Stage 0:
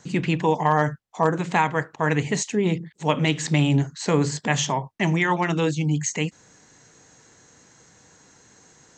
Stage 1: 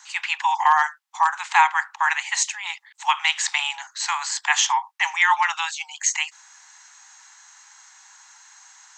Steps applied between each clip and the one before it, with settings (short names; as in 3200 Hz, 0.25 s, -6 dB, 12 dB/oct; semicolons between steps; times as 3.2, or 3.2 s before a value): steep high-pass 800 Hz 96 dB/oct; gain +6 dB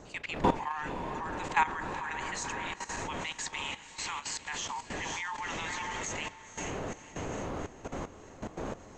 wind noise 620 Hz -28 dBFS; diffused feedback echo 0.496 s, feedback 59%, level -8 dB; level quantiser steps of 14 dB; gain -8.5 dB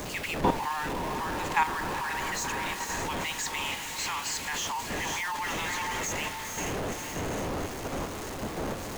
zero-crossing step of -32.5 dBFS